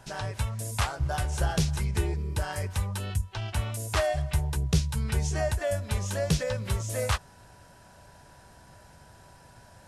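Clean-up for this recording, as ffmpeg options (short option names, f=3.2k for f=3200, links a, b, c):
-af "bandreject=f=980:w=30"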